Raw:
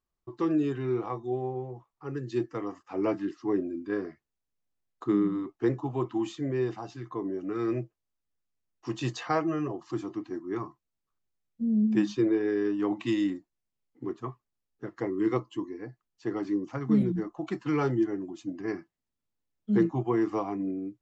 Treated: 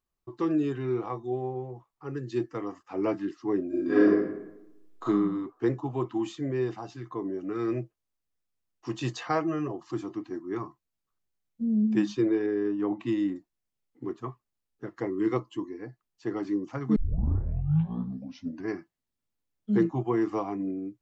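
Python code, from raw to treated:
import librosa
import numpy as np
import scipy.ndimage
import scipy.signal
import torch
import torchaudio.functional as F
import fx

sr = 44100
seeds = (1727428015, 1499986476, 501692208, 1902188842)

y = fx.reverb_throw(x, sr, start_s=3.68, length_s=1.36, rt60_s=0.94, drr_db=-10.0)
y = fx.high_shelf(y, sr, hz=2100.0, db=-10.5, at=(12.46, 13.36))
y = fx.edit(y, sr, fx.tape_start(start_s=16.96, length_s=1.73), tone=tone)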